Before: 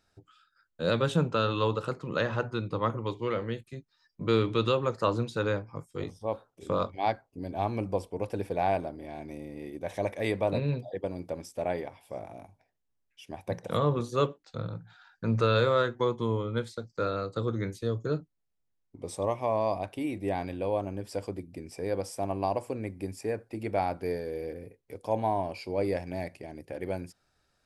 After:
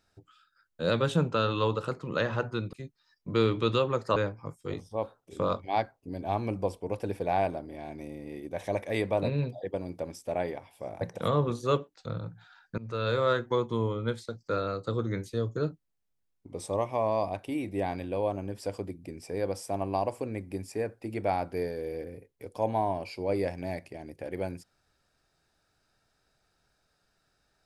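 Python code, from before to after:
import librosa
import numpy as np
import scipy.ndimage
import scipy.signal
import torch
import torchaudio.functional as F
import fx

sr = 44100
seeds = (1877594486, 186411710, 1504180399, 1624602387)

y = fx.edit(x, sr, fx.cut(start_s=2.73, length_s=0.93),
    fx.cut(start_s=5.09, length_s=0.37),
    fx.cut(start_s=12.31, length_s=1.19),
    fx.fade_in_from(start_s=15.27, length_s=0.54, floor_db=-23.0), tone=tone)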